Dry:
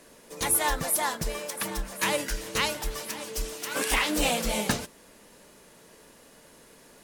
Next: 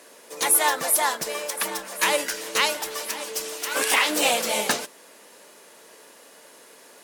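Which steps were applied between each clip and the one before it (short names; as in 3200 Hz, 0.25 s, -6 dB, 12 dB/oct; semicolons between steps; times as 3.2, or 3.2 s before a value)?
HPF 390 Hz 12 dB/oct; gain +5.5 dB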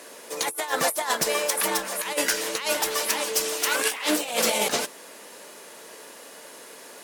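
negative-ratio compressor -26 dBFS, ratio -0.5; gain +2 dB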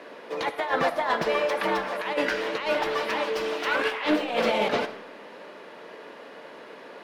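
in parallel at -4.5 dB: hard clip -23.5 dBFS, distortion -9 dB; on the sum: air absorption 350 m; reverb RT60 0.80 s, pre-delay 20 ms, DRR 11 dB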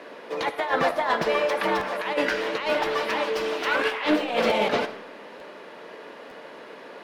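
crackling interface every 0.90 s, samples 512, repeat, from 0.89; gain +1.5 dB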